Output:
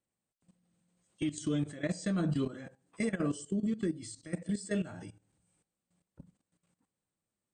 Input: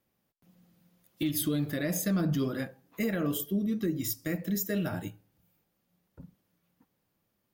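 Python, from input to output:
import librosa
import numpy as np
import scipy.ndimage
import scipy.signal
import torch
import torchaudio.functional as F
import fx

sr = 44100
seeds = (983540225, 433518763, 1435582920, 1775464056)

y = fx.freq_compress(x, sr, knee_hz=2700.0, ratio=1.5)
y = fx.level_steps(y, sr, step_db=15)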